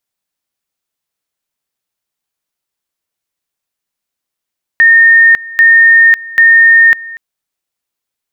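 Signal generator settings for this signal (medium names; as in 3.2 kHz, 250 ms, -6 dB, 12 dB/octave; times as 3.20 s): two-level tone 1.83 kHz -2 dBFS, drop 21 dB, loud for 0.55 s, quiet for 0.24 s, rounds 3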